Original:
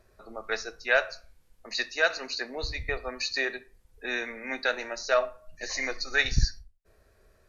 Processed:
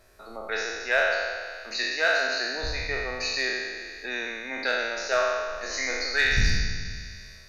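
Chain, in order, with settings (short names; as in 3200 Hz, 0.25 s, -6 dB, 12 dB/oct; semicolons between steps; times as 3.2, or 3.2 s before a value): spectral trails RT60 1.72 s; notch 1200 Hz, Q 27; in parallel at -6 dB: hard clip -14.5 dBFS, distortion -17 dB; on the sum: mismatched tape noise reduction encoder only; gain -6 dB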